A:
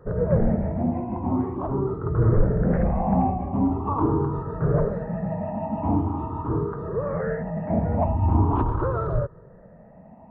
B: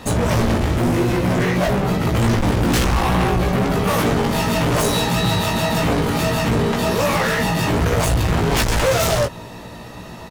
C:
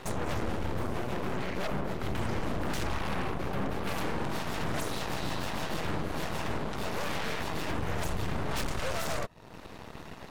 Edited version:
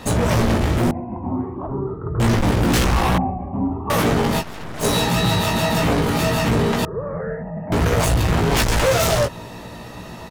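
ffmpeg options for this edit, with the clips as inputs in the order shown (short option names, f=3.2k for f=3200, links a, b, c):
-filter_complex "[0:a]asplit=3[a][b][c];[1:a]asplit=5[d][e][f][g][h];[d]atrim=end=0.912[i];[a]atrim=start=0.908:end=2.202[j];[e]atrim=start=2.198:end=3.182[k];[b]atrim=start=3.178:end=3.902[l];[f]atrim=start=3.898:end=4.44[m];[2:a]atrim=start=4.38:end=4.85[n];[g]atrim=start=4.79:end=6.852[o];[c]atrim=start=6.848:end=7.722[p];[h]atrim=start=7.718[q];[i][j]acrossfade=d=0.004:c1=hsin:c2=hsin[r];[r][k]acrossfade=d=0.004:c1=hsin:c2=hsin[s];[s][l]acrossfade=d=0.004:c1=hsin:c2=hsin[t];[t][m]acrossfade=d=0.004:c1=hsin:c2=hsin[u];[u][n]acrossfade=d=0.06:c1=tri:c2=tri[v];[v][o]acrossfade=d=0.06:c1=tri:c2=tri[w];[w][p]acrossfade=d=0.004:c1=hsin:c2=hsin[x];[x][q]acrossfade=d=0.004:c1=hsin:c2=hsin"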